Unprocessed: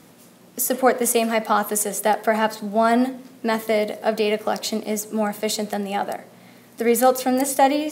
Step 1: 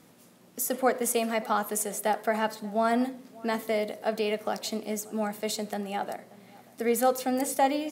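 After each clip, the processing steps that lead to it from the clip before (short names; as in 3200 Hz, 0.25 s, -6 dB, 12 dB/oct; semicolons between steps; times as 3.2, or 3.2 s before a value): outdoor echo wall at 100 m, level -22 dB; gain -7.5 dB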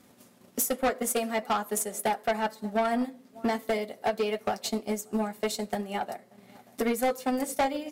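transient shaper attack +11 dB, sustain -6 dB; notch comb 160 Hz; soft clip -21 dBFS, distortion -8 dB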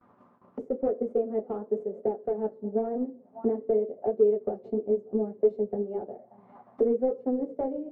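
gate with hold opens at -47 dBFS; flange 0.96 Hz, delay 7.6 ms, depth 8.6 ms, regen -41%; envelope low-pass 430–1200 Hz down, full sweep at -34 dBFS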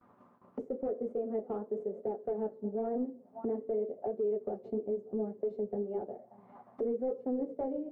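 limiter -23.5 dBFS, peak gain reduction 11.5 dB; gain -2.5 dB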